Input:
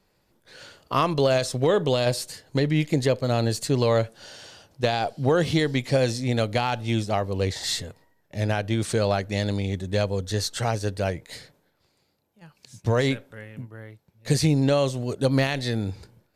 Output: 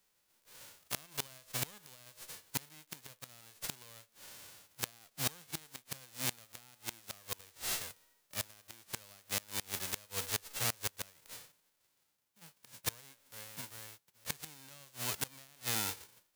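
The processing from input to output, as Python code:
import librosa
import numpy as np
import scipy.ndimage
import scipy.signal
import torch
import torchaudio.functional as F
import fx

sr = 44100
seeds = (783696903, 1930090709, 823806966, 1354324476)

y = fx.envelope_flatten(x, sr, power=0.1)
y = fx.gate_flip(y, sr, shuts_db=-10.0, range_db=-26)
y = F.gain(torch.from_numpy(y), -8.5).numpy()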